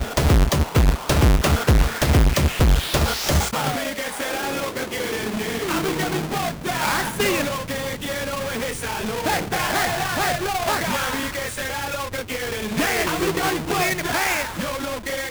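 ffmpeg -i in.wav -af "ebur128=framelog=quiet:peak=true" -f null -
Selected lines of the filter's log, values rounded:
Integrated loudness:
  I:         -22.0 LUFS
  Threshold: -32.0 LUFS
Loudness range:
  LRA:         4.9 LU
  Threshold: -42.5 LUFS
  LRA low:   -24.0 LUFS
  LRA high:  -19.1 LUFS
True peak:
  Peak:       -8.9 dBFS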